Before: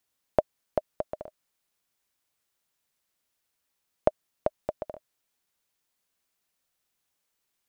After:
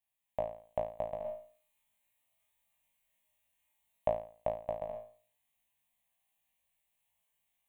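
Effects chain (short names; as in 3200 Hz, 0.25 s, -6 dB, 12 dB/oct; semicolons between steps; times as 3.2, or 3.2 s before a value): in parallel at +1.5 dB: limiter -16.5 dBFS, peak gain reduction 10 dB; on the sum: fixed phaser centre 1400 Hz, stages 6; resonator 56 Hz, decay 0.43 s, harmonics all, mix 100%; AGC gain up to 6.5 dB; 1.21–4.08 doubler 39 ms -2.5 dB; gain -4 dB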